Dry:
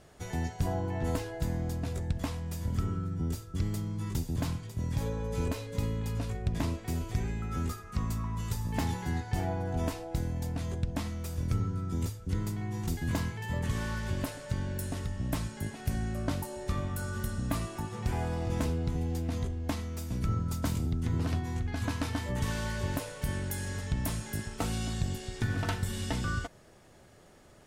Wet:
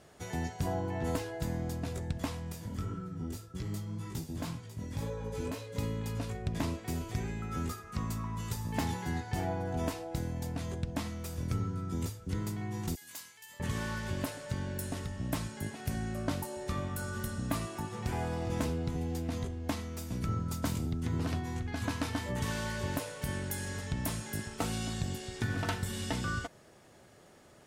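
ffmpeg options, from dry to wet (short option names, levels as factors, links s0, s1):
-filter_complex "[0:a]asettb=1/sr,asplit=3[s0][s1][s2];[s0]atrim=end=2.524[s3];[s1]atrim=start=2.52:end=5.76,asetpts=PTS-STARTPTS,afade=t=in:d=0.004:c=qsin,afade=t=out:st=3.236:d=0.004:c=qsin,flanger=delay=16:depth=4.9:speed=1.9[s4];[s2]atrim=start=5.756[s5];[s3][s4]acrossfade=d=0.004:c1=hsin:c2=qsin[s6];[s6][s5]acrossfade=d=0.004:c1=qsin:c2=hsin,asettb=1/sr,asplit=3[s7][s8][s9];[s7]atrim=end=12.954[s10];[s8]atrim=start=12.95:end=13.6,asetpts=PTS-STARTPTS,afade=t=in:d=0.004:c=qsin,afade=t=out:st=0.646:d=0.004:c=qsin,aderivative[s11];[s9]atrim=start=13.596[s12];[s10][s11]acrossfade=d=0.004:c1=hsin:c2=qsin[s13];[s13][s12]acrossfade=d=0.004:c1=qsin:c2=hsin,highpass=f=110:p=1"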